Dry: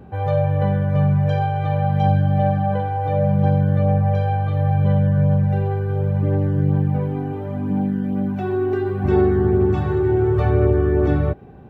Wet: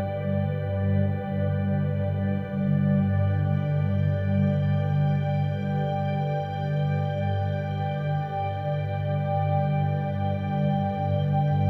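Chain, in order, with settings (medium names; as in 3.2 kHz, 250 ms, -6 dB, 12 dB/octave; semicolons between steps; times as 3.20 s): peaking EQ 1 kHz -13.5 dB 0.37 oct; flutter echo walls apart 7.8 m, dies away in 0.41 s; Paulstretch 8.5×, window 1.00 s, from 0.61 s; trim -5 dB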